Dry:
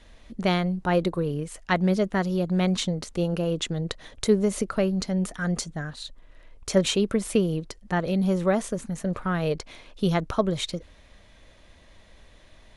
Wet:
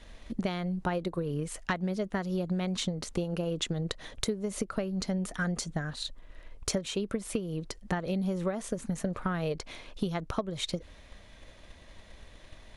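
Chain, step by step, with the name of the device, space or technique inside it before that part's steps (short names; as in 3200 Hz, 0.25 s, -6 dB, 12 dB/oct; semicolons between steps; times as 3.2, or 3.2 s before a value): drum-bus smash (transient shaper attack +6 dB, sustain +1 dB; compressor 12:1, threshold -27 dBFS, peak gain reduction 18.5 dB; soft clip -14.5 dBFS, distortion -27 dB)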